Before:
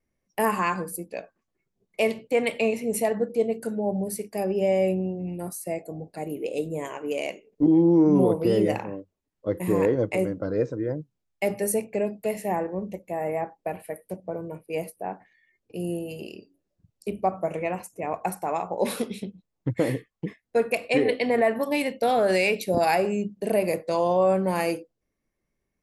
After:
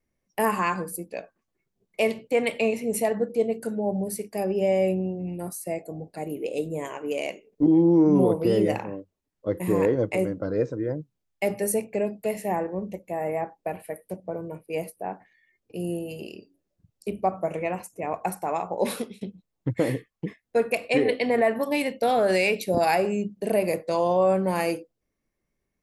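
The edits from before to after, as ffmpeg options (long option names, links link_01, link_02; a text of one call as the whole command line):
ffmpeg -i in.wav -filter_complex "[0:a]asplit=2[link_01][link_02];[link_01]atrim=end=19.21,asetpts=PTS-STARTPTS,afade=type=out:start_time=18.91:duration=0.3:silence=0.141254[link_03];[link_02]atrim=start=19.21,asetpts=PTS-STARTPTS,afade=type=in:duration=0.004:curve=hsin:silence=0.141254[link_04];[link_03][link_04]concat=n=2:v=0:a=1" out.wav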